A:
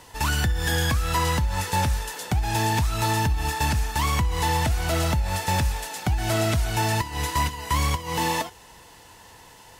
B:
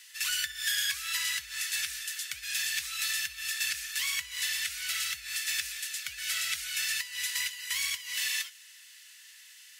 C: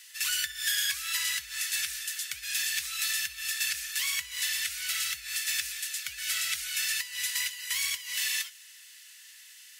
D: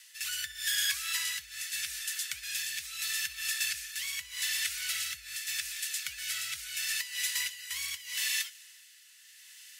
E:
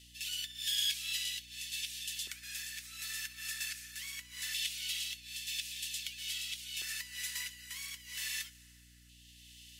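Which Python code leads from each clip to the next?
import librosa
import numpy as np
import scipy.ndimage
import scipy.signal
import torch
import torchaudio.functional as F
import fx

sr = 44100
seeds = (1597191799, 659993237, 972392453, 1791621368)

y1 = scipy.signal.sosfilt(scipy.signal.cheby2(4, 40, 900.0, 'highpass', fs=sr, output='sos'), x)
y2 = fx.high_shelf(y1, sr, hz=7300.0, db=4.0)
y3 = fx.rotary(y2, sr, hz=0.8)
y4 = fx.filter_lfo_highpass(y3, sr, shape='square', hz=0.22, low_hz=360.0, high_hz=3100.0, q=2.6)
y4 = fx.add_hum(y4, sr, base_hz=60, snr_db=21)
y4 = F.gain(torch.from_numpy(y4), -7.5).numpy()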